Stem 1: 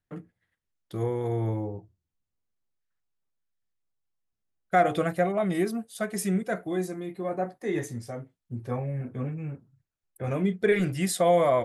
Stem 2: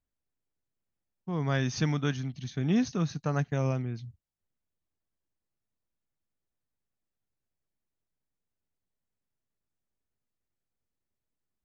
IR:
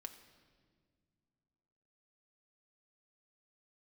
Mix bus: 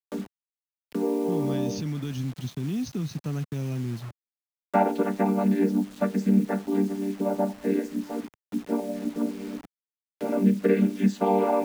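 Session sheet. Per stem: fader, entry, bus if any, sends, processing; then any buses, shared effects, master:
+2.0 dB, 0.00 s, send −11 dB, channel vocoder with a chord as carrier minor triad, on G3
+2.5 dB, 0.00 s, no send, flat-topped bell 1,000 Hz −12.5 dB 2.3 octaves; brickwall limiter −28 dBFS, peak gain reduction 11 dB; dead-zone distortion −57 dBFS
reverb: on, pre-delay 5 ms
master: bit-depth reduction 8 bits, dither none; multiband upward and downward compressor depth 40%

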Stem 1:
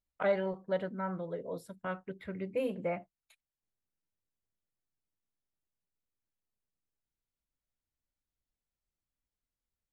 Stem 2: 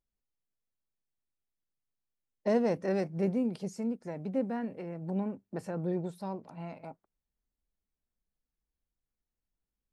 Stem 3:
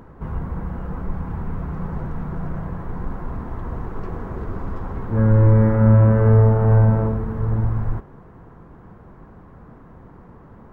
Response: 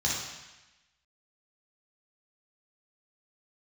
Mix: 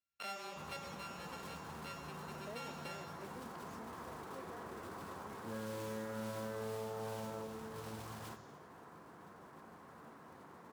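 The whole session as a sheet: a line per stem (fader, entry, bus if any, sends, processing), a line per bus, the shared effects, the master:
−5.5 dB, 0.00 s, send −10.5 dB, samples sorted by size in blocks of 32 samples; low-shelf EQ 180 Hz +11.5 dB
−11.0 dB, 0.00 s, no send, no processing
−4.5 dB, 0.35 s, send −19.5 dB, noise that follows the level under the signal 24 dB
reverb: on, RT60 1.0 s, pre-delay 3 ms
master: meter weighting curve A; downward compressor 2.5 to 1, threshold −47 dBFS, peak gain reduction 14.5 dB

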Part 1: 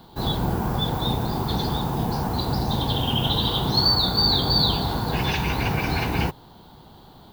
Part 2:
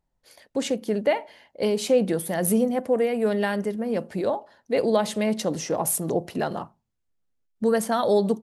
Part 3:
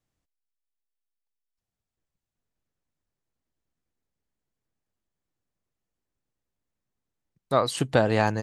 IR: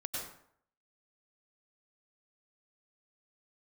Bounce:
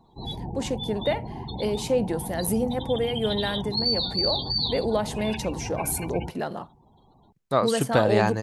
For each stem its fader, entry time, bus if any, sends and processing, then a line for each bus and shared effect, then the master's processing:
−9.5 dB, 0.00 s, no send, hum removal 166.7 Hz, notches 27; gate on every frequency bin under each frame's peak −15 dB strong; high-shelf EQ 3,900 Hz +9 dB
−3.5 dB, 0.00 s, no send, no processing
0.0 dB, 0.00 s, no send, no processing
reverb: not used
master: no processing

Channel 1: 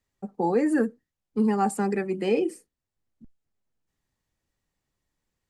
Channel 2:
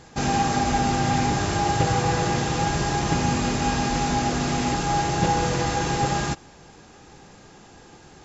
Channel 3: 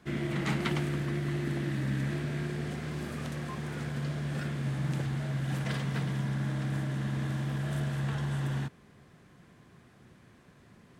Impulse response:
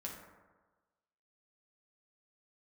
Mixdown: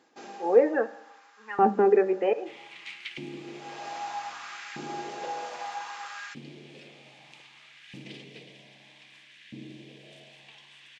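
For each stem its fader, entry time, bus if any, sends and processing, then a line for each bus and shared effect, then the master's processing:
+2.5 dB, 0.00 s, send −9.5 dB, elliptic low-pass filter 2,900 Hz; mains-hum notches 50/100/150/200 Hz; volume swells 195 ms
−12.0 dB, 0.00 s, no send, spectral tilt +3.5 dB per octave; automatic ducking −17 dB, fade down 0.80 s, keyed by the first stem
−4.0 dB, 2.40 s, no send, drawn EQ curve 110 Hz 0 dB, 350 Hz −4 dB, 1,400 Hz −22 dB, 2,400 Hz +9 dB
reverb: on, RT60 1.3 s, pre-delay 5 ms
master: auto-filter high-pass saw up 0.63 Hz 270–1,700 Hz; head-to-tape spacing loss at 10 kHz 24 dB

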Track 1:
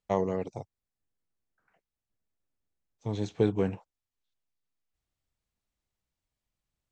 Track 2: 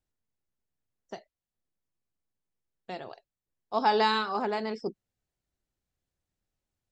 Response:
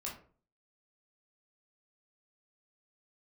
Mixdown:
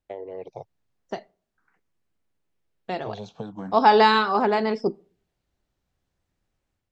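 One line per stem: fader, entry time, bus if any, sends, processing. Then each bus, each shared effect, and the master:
−1.5 dB, 0.00 s, no send, downward compressor 6 to 1, threshold −28 dBFS, peak gain reduction 9 dB; high-pass filter 200 Hz 12 dB per octave; frequency shifter mixed with the dry sound +0.42 Hz
+2.0 dB, 0.00 s, send −20 dB, no processing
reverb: on, RT60 0.45 s, pre-delay 14 ms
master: high-shelf EQ 5,900 Hz −12 dB; automatic gain control gain up to 7 dB

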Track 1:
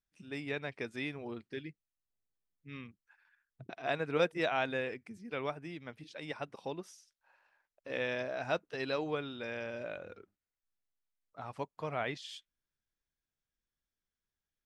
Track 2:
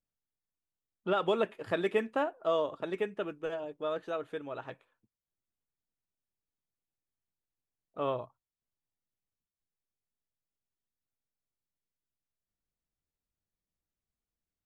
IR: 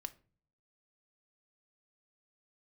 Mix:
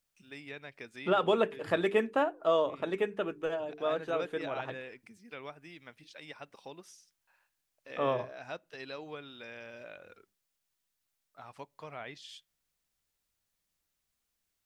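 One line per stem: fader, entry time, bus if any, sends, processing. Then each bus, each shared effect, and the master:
−10.5 dB, 0.00 s, send −11.5 dB, noise gate with hold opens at −58 dBFS
+2.5 dB, 0.00 s, no send, mains-hum notches 50/100/150/200/250/300/350/400/450 Hz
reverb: on, RT60 0.45 s, pre-delay 3 ms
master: one half of a high-frequency compander encoder only

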